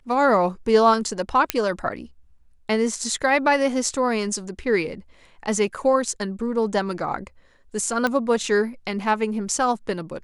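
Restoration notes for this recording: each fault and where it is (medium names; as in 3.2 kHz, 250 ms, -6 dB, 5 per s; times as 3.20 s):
1.50 s: pop -3 dBFS
8.07 s: pop -10 dBFS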